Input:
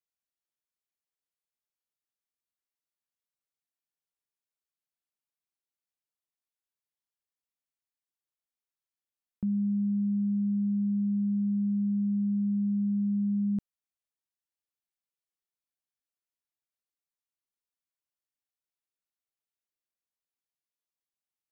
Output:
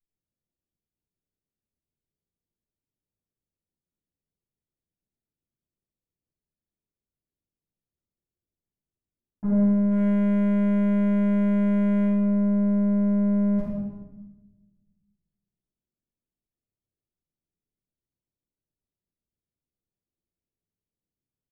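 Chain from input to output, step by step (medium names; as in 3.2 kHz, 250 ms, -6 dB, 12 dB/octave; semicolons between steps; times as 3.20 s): comb filter that takes the minimum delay 0.33 ms; level-controlled noise filter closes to 370 Hz; 9.91–12.05 s: waveshaping leveller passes 1; feedback comb 54 Hz, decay 0.62 s, harmonics all, mix 40%; saturation -38 dBFS, distortion -12 dB; echo from a far wall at 19 m, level -10 dB; simulated room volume 590 m³, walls mixed, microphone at 8.2 m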